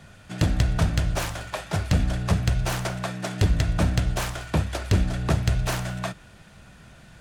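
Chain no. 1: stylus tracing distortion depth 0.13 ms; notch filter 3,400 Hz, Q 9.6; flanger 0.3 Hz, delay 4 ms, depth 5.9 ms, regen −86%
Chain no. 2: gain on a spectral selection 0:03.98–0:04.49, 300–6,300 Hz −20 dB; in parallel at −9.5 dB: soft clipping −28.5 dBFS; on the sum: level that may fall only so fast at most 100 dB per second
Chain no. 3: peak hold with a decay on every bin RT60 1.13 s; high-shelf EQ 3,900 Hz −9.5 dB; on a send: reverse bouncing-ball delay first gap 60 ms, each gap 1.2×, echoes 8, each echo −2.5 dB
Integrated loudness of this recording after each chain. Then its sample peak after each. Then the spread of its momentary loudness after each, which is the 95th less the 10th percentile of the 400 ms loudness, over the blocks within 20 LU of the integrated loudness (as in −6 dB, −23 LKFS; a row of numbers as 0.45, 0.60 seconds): −30.5, −24.5, −19.5 LKFS; −14.5, −10.0, −3.0 dBFS; 8, 7, 10 LU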